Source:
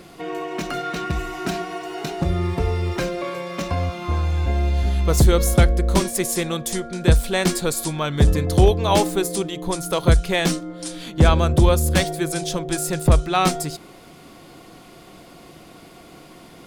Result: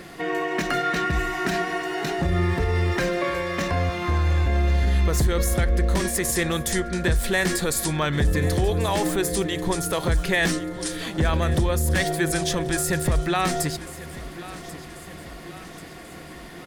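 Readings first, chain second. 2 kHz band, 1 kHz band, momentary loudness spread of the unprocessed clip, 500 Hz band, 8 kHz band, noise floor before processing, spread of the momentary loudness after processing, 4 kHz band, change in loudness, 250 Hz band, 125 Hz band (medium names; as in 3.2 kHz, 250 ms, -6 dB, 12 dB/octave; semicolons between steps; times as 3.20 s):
+3.5 dB, -2.0 dB, 12 LU, -3.0 dB, -1.0 dB, -45 dBFS, 16 LU, -2.0 dB, -2.5 dB, -2.5 dB, -3.5 dB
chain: peak limiter -16.5 dBFS, peak gain reduction 11.5 dB; peaking EQ 1.8 kHz +11 dB 0.32 oct; on a send: feedback delay 1088 ms, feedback 54%, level -16.5 dB; on the sum: trim +2 dB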